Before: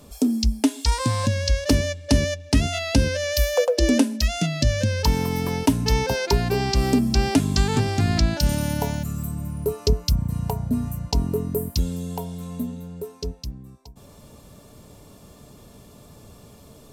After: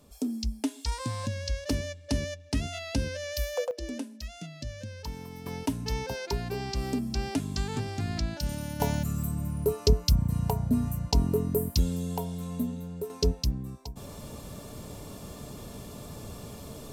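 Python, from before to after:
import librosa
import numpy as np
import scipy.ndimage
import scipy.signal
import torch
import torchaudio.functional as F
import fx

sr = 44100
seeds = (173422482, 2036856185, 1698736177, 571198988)

y = fx.gain(x, sr, db=fx.steps((0.0, -10.5), (3.71, -18.0), (5.46, -11.0), (8.8, -2.0), (13.1, 5.0)))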